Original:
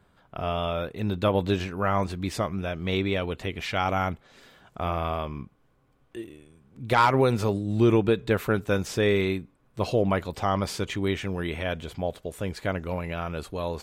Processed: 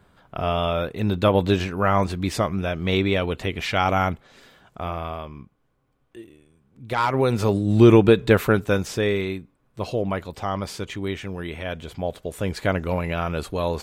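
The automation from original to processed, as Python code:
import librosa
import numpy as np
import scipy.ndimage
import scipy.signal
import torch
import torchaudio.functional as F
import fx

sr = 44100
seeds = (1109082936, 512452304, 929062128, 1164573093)

y = fx.gain(x, sr, db=fx.line((4.04, 5.0), (5.33, -4.0), (6.91, -4.0), (7.67, 7.5), (8.34, 7.5), (9.26, -1.5), (11.58, -1.5), (12.59, 6.0)))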